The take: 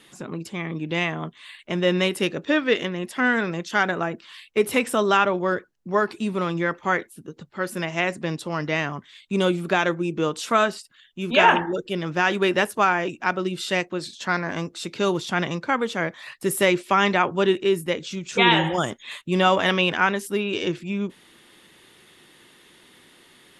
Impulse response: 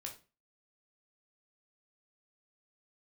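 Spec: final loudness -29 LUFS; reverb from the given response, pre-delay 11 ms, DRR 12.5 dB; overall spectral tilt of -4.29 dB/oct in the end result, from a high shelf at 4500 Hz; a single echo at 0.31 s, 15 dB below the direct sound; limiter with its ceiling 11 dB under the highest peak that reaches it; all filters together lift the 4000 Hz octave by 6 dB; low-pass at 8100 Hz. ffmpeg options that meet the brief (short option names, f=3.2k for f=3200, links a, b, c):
-filter_complex "[0:a]lowpass=8.1k,equalizer=f=4k:t=o:g=7,highshelf=f=4.5k:g=3,alimiter=limit=-11.5dB:level=0:latency=1,aecho=1:1:310:0.178,asplit=2[a][b];[1:a]atrim=start_sample=2205,adelay=11[c];[b][c]afir=irnorm=-1:irlink=0,volume=-9.5dB[d];[a][d]amix=inputs=2:normalize=0,volume=-5dB"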